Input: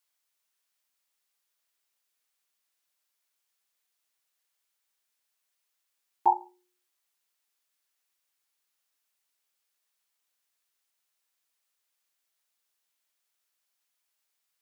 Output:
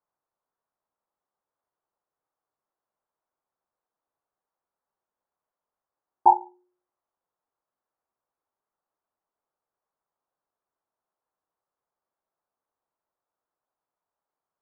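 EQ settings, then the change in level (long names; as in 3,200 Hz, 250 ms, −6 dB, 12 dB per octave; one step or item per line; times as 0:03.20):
low-pass filter 1,100 Hz 24 dB per octave
parametric band 240 Hz −3 dB
+7.0 dB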